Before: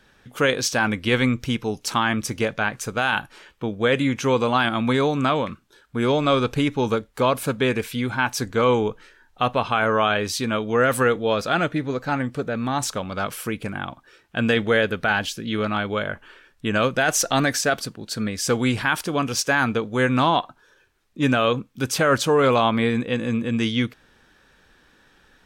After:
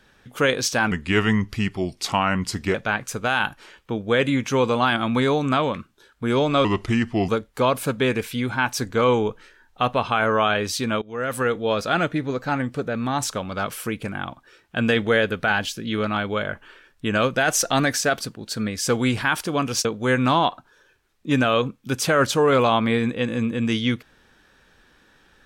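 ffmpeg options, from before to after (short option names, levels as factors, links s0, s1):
-filter_complex "[0:a]asplit=7[s0][s1][s2][s3][s4][s5][s6];[s0]atrim=end=0.914[s7];[s1]atrim=start=0.91:end=2.47,asetpts=PTS-STARTPTS,asetrate=37485,aresample=44100,atrim=end_sample=80936,asetpts=PTS-STARTPTS[s8];[s2]atrim=start=2.466:end=6.374[s9];[s3]atrim=start=6.37:end=6.89,asetpts=PTS-STARTPTS,asetrate=35721,aresample=44100,atrim=end_sample=28311,asetpts=PTS-STARTPTS[s10];[s4]atrim=start=6.886:end=10.62,asetpts=PTS-STARTPTS,afade=t=out:st=3.73:d=0.004:c=hsin:silence=0.0944061[s11];[s5]atrim=start=10.62:end=19.452,asetpts=PTS-STARTPTS,afade=t=in:d=0.96:c=qsin:silence=0.0944061[s12];[s6]atrim=start=19.758[s13];[s7][s8]acrossfade=d=0.004:c1=hsin:c2=hsin[s14];[s14][s9]acrossfade=d=0.004:c1=hsin:c2=hsin[s15];[s15][s10]acrossfade=d=0.004:c1=hsin:c2=hsin[s16];[s11][s12]concat=n=2:v=0:a=1[s17];[s16][s17]acrossfade=d=0.004:c1=hsin:c2=hsin[s18];[s18][s13]acrossfade=d=0.004:c1=hsin:c2=hsin"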